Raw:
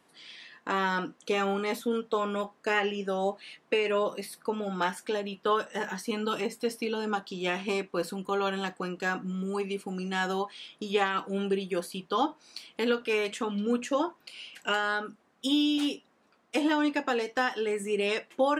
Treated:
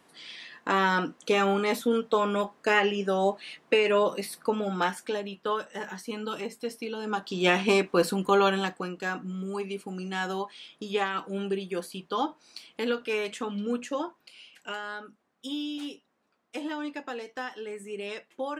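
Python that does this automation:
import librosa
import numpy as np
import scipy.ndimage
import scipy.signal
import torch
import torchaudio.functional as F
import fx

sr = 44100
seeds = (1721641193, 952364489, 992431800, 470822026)

y = fx.gain(x, sr, db=fx.line((4.52, 4.0), (5.62, -3.5), (6.98, -3.5), (7.45, 7.5), (8.39, 7.5), (8.94, -1.5), (13.61, -1.5), (14.73, -8.0)))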